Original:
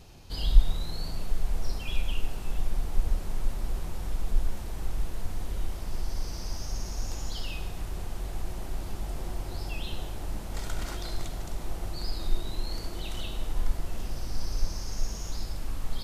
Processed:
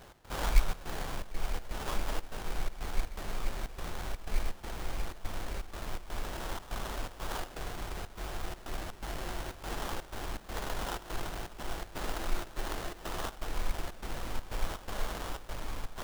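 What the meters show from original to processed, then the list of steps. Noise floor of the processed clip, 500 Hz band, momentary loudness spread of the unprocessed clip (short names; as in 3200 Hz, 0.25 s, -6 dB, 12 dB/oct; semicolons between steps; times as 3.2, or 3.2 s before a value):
-50 dBFS, +2.0 dB, 5 LU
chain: sample-rate reducer 2300 Hz, jitter 20%; low shelf 320 Hz -11.5 dB; step gate "x.xxxx.xxx.x" 123 bpm -12 dB; gain +5 dB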